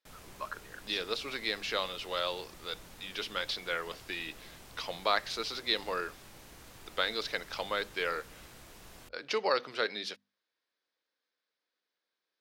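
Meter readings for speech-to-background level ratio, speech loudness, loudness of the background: 18.0 dB, −34.5 LKFS, −52.5 LKFS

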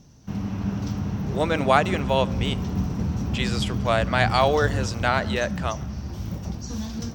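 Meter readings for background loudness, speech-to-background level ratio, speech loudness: −28.5 LKFS, 4.0 dB, −24.5 LKFS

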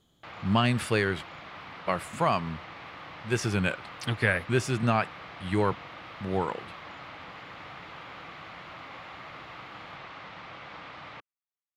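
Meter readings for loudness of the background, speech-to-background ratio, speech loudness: −43.5 LKFS, 14.5 dB, −29.0 LKFS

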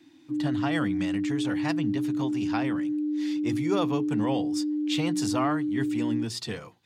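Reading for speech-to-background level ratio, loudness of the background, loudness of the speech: −3.5 dB, −29.0 LKFS, −32.5 LKFS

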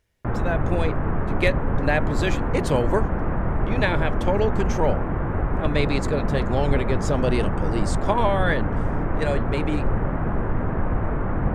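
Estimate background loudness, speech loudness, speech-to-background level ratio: −26.0 LKFS, −26.5 LKFS, −0.5 dB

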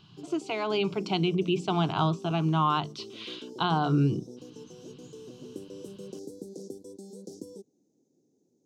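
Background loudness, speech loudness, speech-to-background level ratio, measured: −45.5 LKFS, −28.0 LKFS, 17.5 dB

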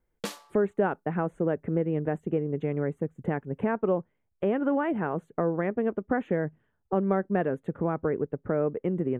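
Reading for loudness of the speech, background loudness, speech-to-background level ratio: −29.0 LKFS, −39.5 LKFS, 10.5 dB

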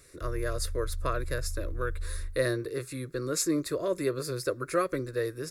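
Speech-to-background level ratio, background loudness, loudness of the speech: 8.0 dB, −40.0 LKFS, −32.0 LKFS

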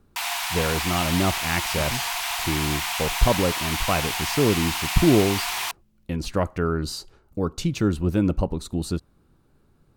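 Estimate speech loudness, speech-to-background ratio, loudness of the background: −25.5 LKFS, 0.5 dB, −26.0 LKFS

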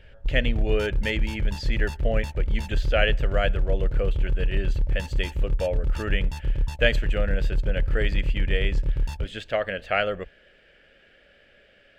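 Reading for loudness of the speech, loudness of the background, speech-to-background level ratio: −29.0 LKFS, −28.5 LKFS, −0.5 dB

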